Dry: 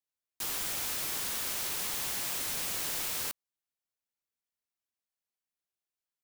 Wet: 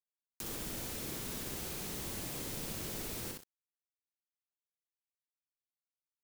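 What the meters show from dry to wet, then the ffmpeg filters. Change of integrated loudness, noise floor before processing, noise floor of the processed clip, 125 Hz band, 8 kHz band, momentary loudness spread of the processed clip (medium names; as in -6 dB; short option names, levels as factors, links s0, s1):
-8.0 dB, under -85 dBFS, under -85 dBFS, +6.5 dB, -8.5 dB, 3 LU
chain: -filter_complex "[0:a]acrossover=split=450[s0][s1];[s1]acompressor=threshold=0.00282:ratio=4[s2];[s0][s2]amix=inputs=2:normalize=0,asplit=2[s3][s4];[s4]aecho=0:1:62|124|186|248:0.668|0.227|0.0773|0.0263[s5];[s3][s5]amix=inputs=2:normalize=0,acrusher=bits=8:mix=0:aa=0.000001,volume=1.78"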